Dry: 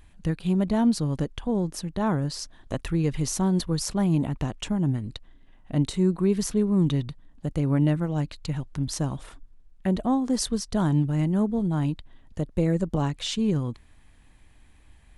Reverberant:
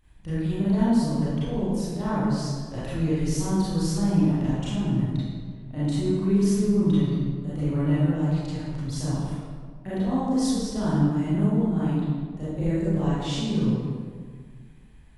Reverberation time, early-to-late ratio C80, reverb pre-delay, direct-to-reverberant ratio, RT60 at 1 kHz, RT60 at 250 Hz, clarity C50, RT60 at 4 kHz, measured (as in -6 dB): 1.7 s, -1.0 dB, 28 ms, -11.5 dB, 1.6 s, 2.1 s, -4.5 dB, 1.1 s